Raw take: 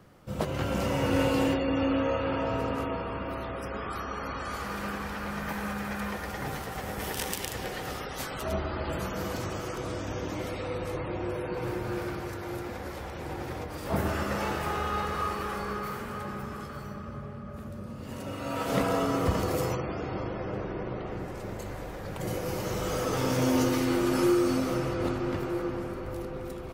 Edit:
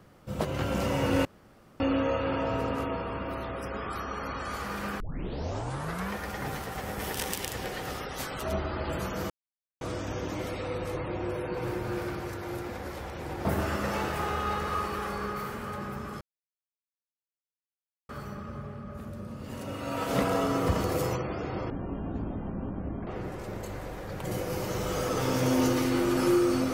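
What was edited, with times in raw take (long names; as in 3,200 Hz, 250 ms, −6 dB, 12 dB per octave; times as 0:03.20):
0:01.25–0:01.80: fill with room tone
0:05.00: tape start 1.12 s
0:09.30–0:09.81: silence
0:13.45–0:13.92: remove
0:16.68: splice in silence 1.88 s
0:20.29–0:21.03: play speed 54%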